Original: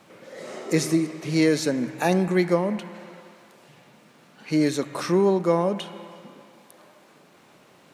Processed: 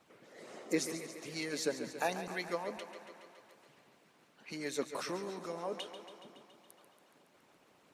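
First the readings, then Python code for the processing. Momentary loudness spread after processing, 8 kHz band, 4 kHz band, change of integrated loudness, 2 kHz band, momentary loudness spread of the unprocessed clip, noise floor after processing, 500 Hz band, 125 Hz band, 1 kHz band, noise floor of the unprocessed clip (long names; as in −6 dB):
19 LU, −8.5 dB, −9.0 dB, −16.0 dB, −10.0 dB, 17 LU, −68 dBFS, −15.5 dB, −23.0 dB, −12.0 dB, −55 dBFS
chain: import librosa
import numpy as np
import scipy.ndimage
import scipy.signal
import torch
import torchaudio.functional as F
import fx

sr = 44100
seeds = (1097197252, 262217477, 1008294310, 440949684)

y = fx.hpss(x, sr, part='harmonic', gain_db=-17)
y = fx.echo_thinned(y, sr, ms=140, feedback_pct=71, hz=160.0, wet_db=-11)
y = y * librosa.db_to_amplitude(-7.5)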